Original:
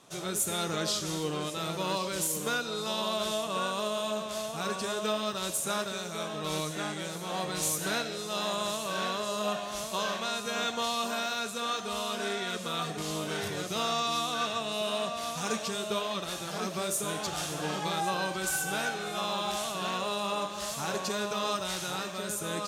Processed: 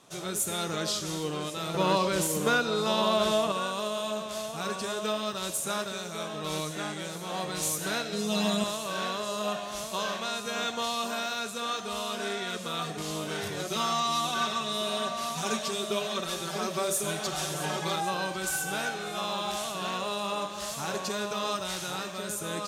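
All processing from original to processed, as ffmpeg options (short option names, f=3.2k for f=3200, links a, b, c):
-filter_complex "[0:a]asettb=1/sr,asplit=3[a][b][c];[a]atrim=end=1.744[d];[b]atrim=start=1.74:end=3.52,asetpts=PTS-STARTPTS,afade=t=in:d=0.004:c=qsin,afade=t=out:st=1.776:d=0.004:c=qsin,highshelf=f=3.4k:g=-8.5,acontrast=89[e];[c]atrim=start=3.516[f];[d][e]acrossfade=d=0.004:c1=hsin:c2=qsin[g];[g][f]acrossfade=d=0.004:c1=qsin:c2=hsin,asettb=1/sr,asplit=3[h][i][j];[h]atrim=end=8.124[k];[i]atrim=start=8.12:end=8.64,asetpts=PTS-STARTPTS,afade=t=in:d=0.004:c=qsin,afade=t=out:st=0.516:d=0.004:c=qsin,equalizer=f=220:w=3.8:g=10,aecho=1:1:4.4:1,atrim=end_sample=22932[l];[j]atrim=start=8.636[m];[k][l]acrossfade=d=0.004:c1=hsin:c2=qsin[n];[n][m]acrossfade=d=0.004:c1=qsin:c2=hsin,asettb=1/sr,asplit=3[o][p][q];[o]atrim=end=13.594[r];[p]atrim=start=13.59:end=17.96,asetpts=PTS-STARTPTS,afade=t=in:d=0.004:c=qsin,afade=t=out:st=4.366:d=0.004:c=qsin,bandreject=f=190:w=6.1,aecho=1:1:5.3:0.74,atrim=end_sample=192717,aecho=1:1:646:0.251,atrim=end_sample=192717[s];[q]atrim=start=17.956[t];[r][s]acrossfade=d=0.004:c1=hsin:c2=qsin[u];[u][t]acrossfade=d=0.004:c1=qsin:c2=hsin"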